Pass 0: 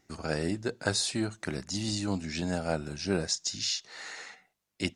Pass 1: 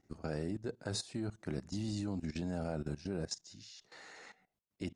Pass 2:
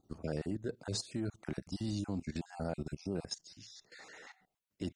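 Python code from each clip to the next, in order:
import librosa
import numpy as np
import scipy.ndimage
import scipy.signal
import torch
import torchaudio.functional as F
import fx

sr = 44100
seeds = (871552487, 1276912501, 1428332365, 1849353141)

y1 = fx.tilt_shelf(x, sr, db=5.5, hz=970.0)
y1 = fx.level_steps(y1, sr, step_db=17)
y1 = y1 * 10.0 ** (-3.0 / 20.0)
y2 = fx.spec_dropout(y1, sr, seeds[0], share_pct=27)
y2 = y2 * 10.0 ** (1.5 / 20.0)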